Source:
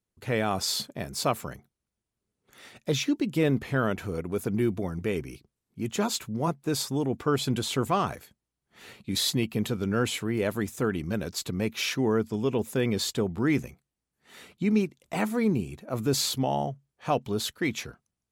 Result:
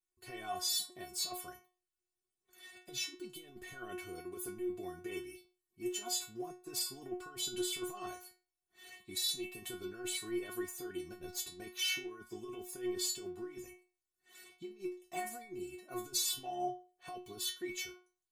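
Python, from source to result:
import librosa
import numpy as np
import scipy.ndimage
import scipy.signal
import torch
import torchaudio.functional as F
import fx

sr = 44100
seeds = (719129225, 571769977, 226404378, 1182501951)

y = fx.low_shelf(x, sr, hz=340.0, db=11.0, at=(11.13, 11.57), fade=0.02)
y = fx.over_compress(y, sr, threshold_db=-28.0, ratio=-0.5)
y = fx.high_shelf(y, sr, hz=5800.0, db=8.0)
y = fx.stiff_resonator(y, sr, f0_hz=360.0, decay_s=0.36, stiffness=0.002)
y = y * 10.0 ** (4.5 / 20.0)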